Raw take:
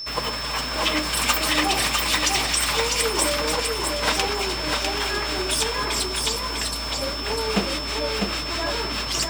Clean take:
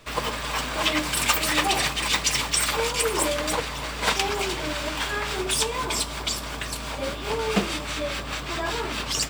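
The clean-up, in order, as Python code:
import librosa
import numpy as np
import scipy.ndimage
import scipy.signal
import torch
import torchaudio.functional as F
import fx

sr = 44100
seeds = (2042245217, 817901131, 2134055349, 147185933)

y = fx.notch(x, sr, hz=5300.0, q=30.0)
y = fx.fix_echo_inverse(y, sr, delay_ms=650, level_db=-3.5)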